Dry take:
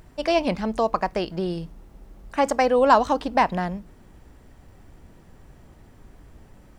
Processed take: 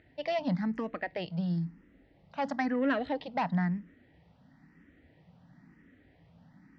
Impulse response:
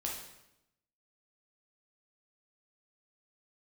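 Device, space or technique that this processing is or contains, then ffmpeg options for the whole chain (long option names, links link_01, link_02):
barber-pole phaser into a guitar amplifier: -filter_complex "[0:a]asplit=2[link_01][link_02];[link_02]afreqshift=1[link_03];[link_01][link_03]amix=inputs=2:normalize=1,asoftclip=type=tanh:threshold=-16dB,highpass=100,equalizer=frequency=170:width_type=q:width=4:gain=10,equalizer=frequency=270:width_type=q:width=4:gain=8,equalizer=frequency=390:width_type=q:width=4:gain=-6,equalizer=frequency=1100:width_type=q:width=4:gain=-5,equalizer=frequency=1900:width_type=q:width=4:gain=10,lowpass=frequency=4600:width=0.5412,lowpass=frequency=4600:width=1.3066,volume=-7dB"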